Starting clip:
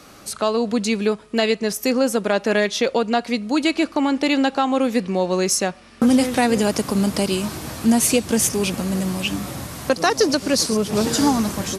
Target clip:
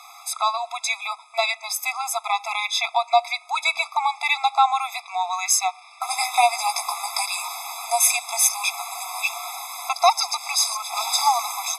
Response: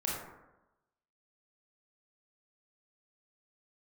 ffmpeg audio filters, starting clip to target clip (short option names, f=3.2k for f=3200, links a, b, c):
-filter_complex "[0:a]asettb=1/sr,asplit=3[a][b][c];[a]atrim=end=6.094[d];[b]atrim=start=6.09:end=7.25,asetpts=PTS-STARTPTS,afade=t=in:d=0.004:c=qsin,afade=t=out:st=1.156:d=0.004:c=qsin,asplit=2[e][f];[f]adelay=17,volume=-6dB[g];[e][g]amix=inputs=2:normalize=0,atrim=end_sample=51156[h];[c]atrim=start=7.246[i];[d][h]acrossfade=d=0.004:c1=hsin:c2=qsin[j];[j][i]acrossfade=d=0.004:c1=qsin:c2=hsin,afftfilt=real='re*eq(mod(floor(b*sr/1024/670),2),1)':imag='im*eq(mod(floor(b*sr/1024/670),2),1)':win_size=1024:overlap=0.75,volume=5dB"